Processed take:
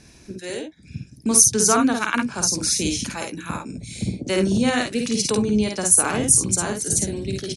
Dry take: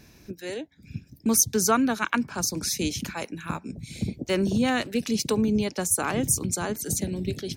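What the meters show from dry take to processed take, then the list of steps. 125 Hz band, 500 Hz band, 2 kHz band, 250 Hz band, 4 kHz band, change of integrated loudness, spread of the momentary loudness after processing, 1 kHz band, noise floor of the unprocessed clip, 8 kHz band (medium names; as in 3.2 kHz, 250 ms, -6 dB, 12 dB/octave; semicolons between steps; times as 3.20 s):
+3.5 dB, +4.0 dB, +4.0 dB, +3.5 dB, +5.5 dB, +6.5 dB, 17 LU, +3.5 dB, -55 dBFS, +8.5 dB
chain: steep low-pass 11 kHz 96 dB/octave; treble shelf 8.2 kHz +11.5 dB; on a send: early reflections 52 ms -3.5 dB, 68 ms -11 dB; on the sum: trim +1.5 dB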